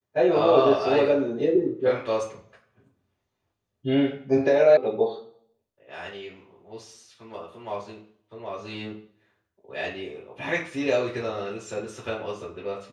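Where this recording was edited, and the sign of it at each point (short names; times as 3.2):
4.77 sound cut off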